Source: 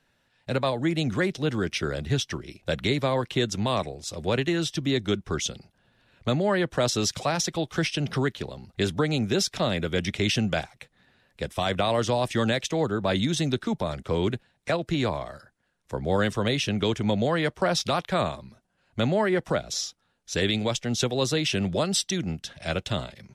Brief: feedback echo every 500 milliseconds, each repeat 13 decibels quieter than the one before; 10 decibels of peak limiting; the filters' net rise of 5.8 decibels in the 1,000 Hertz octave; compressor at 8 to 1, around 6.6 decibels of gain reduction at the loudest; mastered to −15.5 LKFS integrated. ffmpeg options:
ffmpeg -i in.wav -af "equalizer=frequency=1000:width_type=o:gain=7.5,acompressor=threshold=-23dB:ratio=8,alimiter=limit=-22dB:level=0:latency=1,aecho=1:1:500|1000|1500:0.224|0.0493|0.0108,volume=16.5dB" out.wav

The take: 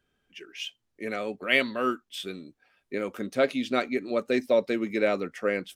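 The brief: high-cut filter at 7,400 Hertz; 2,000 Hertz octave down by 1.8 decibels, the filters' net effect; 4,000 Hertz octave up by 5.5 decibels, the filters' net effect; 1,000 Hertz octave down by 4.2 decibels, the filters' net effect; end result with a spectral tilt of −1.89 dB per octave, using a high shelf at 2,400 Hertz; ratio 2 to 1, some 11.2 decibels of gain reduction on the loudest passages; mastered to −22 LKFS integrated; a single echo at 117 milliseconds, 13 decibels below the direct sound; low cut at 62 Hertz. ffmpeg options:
ffmpeg -i in.wav -af "highpass=62,lowpass=7400,equalizer=frequency=1000:width_type=o:gain=-6.5,equalizer=frequency=2000:width_type=o:gain=-5,highshelf=frequency=2400:gain=6,equalizer=frequency=4000:width_type=o:gain=5,acompressor=threshold=-40dB:ratio=2,aecho=1:1:117:0.224,volume=16dB" out.wav

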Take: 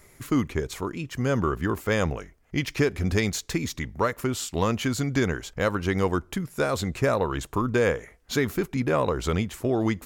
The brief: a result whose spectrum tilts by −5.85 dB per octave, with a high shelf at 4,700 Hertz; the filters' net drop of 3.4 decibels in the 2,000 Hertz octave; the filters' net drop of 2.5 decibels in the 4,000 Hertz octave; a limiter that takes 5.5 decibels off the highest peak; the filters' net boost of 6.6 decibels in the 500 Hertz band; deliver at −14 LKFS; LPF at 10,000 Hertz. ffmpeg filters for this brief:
ffmpeg -i in.wav -af "lowpass=10000,equalizer=frequency=500:width_type=o:gain=8,equalizer=frequency=2000:width_type=o:gain=-5,equalizer=frequency=4000:width_type=o:gain=-5.5,highshelf=frequency=4700:gain=7.5,volume=11dB,alimiter=limit=-1dB:level=0:latency=1" out.wav

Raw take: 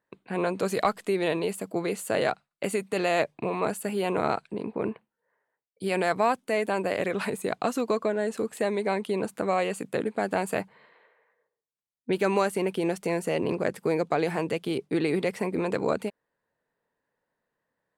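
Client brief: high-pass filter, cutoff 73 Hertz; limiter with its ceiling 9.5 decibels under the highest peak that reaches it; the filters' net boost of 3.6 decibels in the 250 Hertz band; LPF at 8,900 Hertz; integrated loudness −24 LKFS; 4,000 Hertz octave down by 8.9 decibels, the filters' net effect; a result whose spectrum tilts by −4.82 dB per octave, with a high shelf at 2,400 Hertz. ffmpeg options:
ffmpeg -i in.wav -af "highpass=73,lowpass=8900,equalizer=frequency=250:width_type=o:gain=5.5,highshelf=frequency=2400:gain=-7,equalizer=frequency=4000:width_type=o:gain=-5.5,volume=6.5dB,alimiter=limit=-13dB:level=0:latency=1" out.wav

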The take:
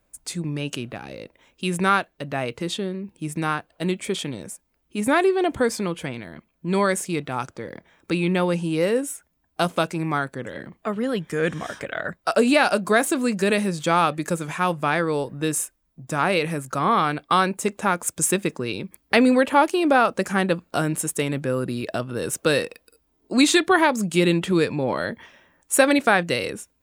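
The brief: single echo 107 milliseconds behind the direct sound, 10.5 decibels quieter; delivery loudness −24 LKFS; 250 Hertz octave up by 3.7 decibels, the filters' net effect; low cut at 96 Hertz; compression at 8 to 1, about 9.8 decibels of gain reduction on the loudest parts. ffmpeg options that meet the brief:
ffmpeg -i in.wav -af "highpass=96,equalizer=frequency=250:width_type=o:gain=5,acompressor=threshold=-19dB:ratio=8,aecho=1:1:107:0.299,volume=1.5dB" out.wav

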